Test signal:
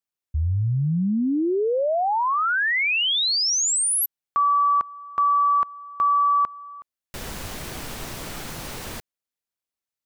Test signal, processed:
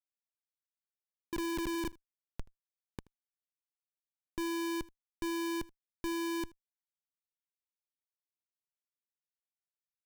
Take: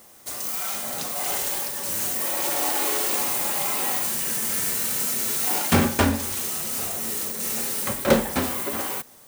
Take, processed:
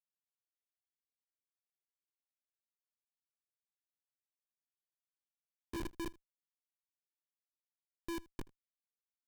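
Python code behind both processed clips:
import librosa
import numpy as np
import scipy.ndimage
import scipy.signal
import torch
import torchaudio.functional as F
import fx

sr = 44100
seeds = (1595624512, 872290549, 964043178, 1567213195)

p1 = fx.partial_stretch(x, sr, pct=91)
p2 = fx.vocoder(p1, sr, bands=8, carrier='square', carrier_hz=335.0)
p3 = fx.schmitt(p2, sr, flips_db=-18.0)
p4 = p3 + fx.echo_single(p3, sr, ms=79, db=-23.5, dry=0)
y = p4 * librosa.db_to_amplitude(-8.0)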